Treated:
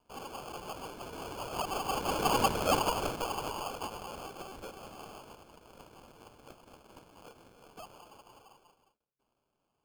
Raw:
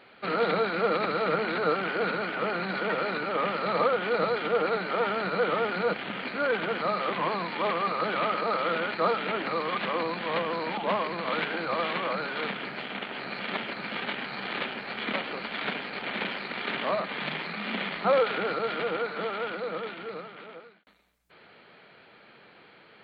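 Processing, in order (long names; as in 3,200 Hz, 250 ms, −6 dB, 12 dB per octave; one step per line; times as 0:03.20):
source passing by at 0:06.01, 8 m/s, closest 4.4 metres
wrong playback speed 33 rpm record played at 78 rpm
decimation without filtering 23×
level +2.5 dB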